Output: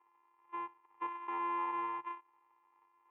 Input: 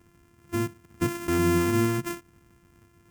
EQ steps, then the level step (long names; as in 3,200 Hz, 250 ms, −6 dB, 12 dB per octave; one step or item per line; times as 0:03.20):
four-pole ladder band-pass 940 Hz, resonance 75%
high-frequency loss of the air 110 metres
phaser with its sweep stopped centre 1,000 Hz, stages 8
+6.5 dB